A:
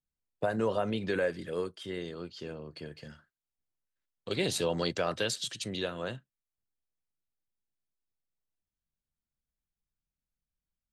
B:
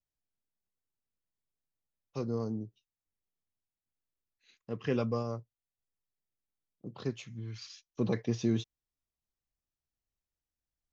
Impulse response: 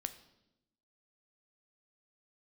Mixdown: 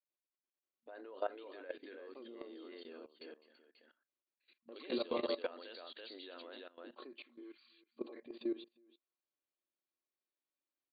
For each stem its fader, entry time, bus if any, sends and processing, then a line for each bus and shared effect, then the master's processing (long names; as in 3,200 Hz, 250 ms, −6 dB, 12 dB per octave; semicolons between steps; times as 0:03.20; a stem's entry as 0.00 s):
−7.5 dB, 0.45 s, no send, echo send −4.5 dB, no processing
−3.5 dB, 0.00 s, no send, echo send −21 dB, brickwall limiter −26 dBFS, peak gain reduction 7.5 dB; hollow resonant body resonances 350/570/1,100/2,400 Hz, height 11 dB, ringing for 75 ms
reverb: not used
echo: single-tap delay 332 ms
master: brick-wall band-pass 230–4,700 Hz; output level in coarse steps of 17 dB